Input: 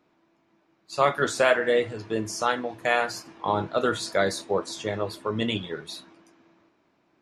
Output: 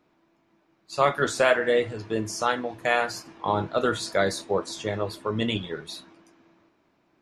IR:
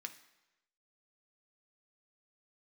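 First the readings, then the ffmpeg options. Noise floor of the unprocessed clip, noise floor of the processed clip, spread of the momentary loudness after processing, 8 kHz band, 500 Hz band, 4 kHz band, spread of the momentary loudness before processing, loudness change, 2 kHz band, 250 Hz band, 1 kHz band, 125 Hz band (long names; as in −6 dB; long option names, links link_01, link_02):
−68 dBFS, −68 dBFS, 10 LU, 0.0 dB, 0.0 dB, 0.0 dB, 10 LU, 0.0 dB, 0.0 dB, +0.5 dB, 0.0 dB, +2.0 dB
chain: -af "lowshelf=frequency=68:gain=7"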